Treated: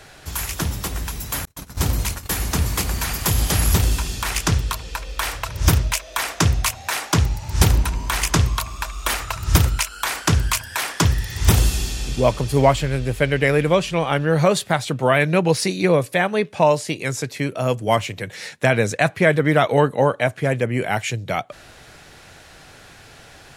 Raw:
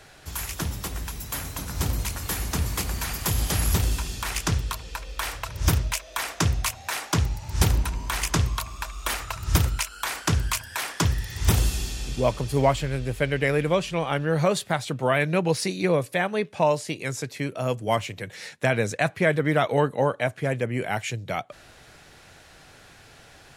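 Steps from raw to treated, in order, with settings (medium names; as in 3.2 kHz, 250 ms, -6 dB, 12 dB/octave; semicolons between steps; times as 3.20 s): 1.45–2.46 s: gate -30 dBFS, range -46 dB; trim +5.5 dB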